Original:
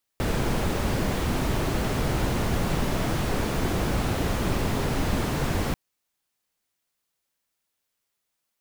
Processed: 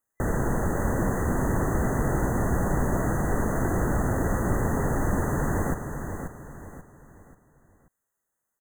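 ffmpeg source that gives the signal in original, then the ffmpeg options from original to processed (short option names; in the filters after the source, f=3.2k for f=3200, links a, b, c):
-f lavfi -i "anoisesrc=c=brown:a=0.279:d=5.54:r=44100:seed=1"
-af "afftfilt=real='re*(1-between(b*sr/4096,2000,6100))':imag='im*(1-between(b*sr/4096,2000,6100))':win_size=4096:overlap=0.75,highshelf=f=8.3k:g=-3.5,aecho=1:1:535|1070|1605|2140:0.422|0.156|0.0577|0.0214"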